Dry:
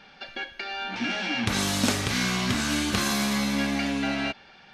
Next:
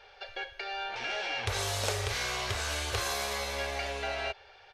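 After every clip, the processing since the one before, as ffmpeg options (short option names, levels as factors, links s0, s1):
-filter_complex "[0:a]firequalizer=gain_entry='entry(100,0);entry(160,-28);entry(280,-26);entry(410,1);entry(1200,-5)':delay=0.05:min_phase=1,asplit=2[s0][s1];[s1]acompressor=threshold=0.0282:ratio=6,volume=0.891[s2];[s0][s2]amix=inputs=2:normalize=0,volume=0.562"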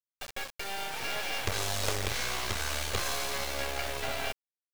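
-af "aeval=exprs='max(val(0),0)':c=same,acrusher=bits=6:mix=0:aa=0.000001,volume=1.58"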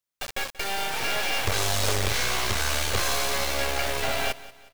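-af "asoftclip=type=tanh:threshold=0.0891,aecho=1:1:183|366|549:0.126|0.0516|0.0212,volume=2.51"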